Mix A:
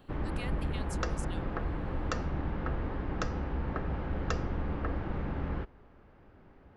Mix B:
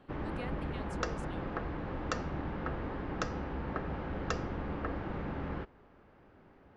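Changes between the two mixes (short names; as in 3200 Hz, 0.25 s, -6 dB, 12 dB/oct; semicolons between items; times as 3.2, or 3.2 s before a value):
speech: add tilt -4 dB/oct; master: add low shelf 91 Hz -10 dB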